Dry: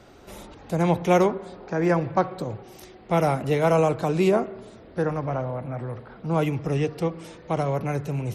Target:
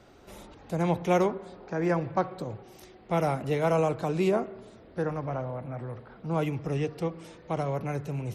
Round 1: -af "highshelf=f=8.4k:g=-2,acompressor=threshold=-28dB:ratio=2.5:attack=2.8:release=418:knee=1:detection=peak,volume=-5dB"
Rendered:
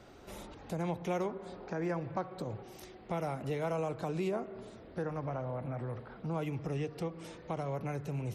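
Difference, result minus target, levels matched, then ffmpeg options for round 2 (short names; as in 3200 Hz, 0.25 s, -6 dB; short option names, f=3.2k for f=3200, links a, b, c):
compressor: peak gain reduction +11 dB
-af "highshelf=f=8.4k:g=-2,volume=-5dB"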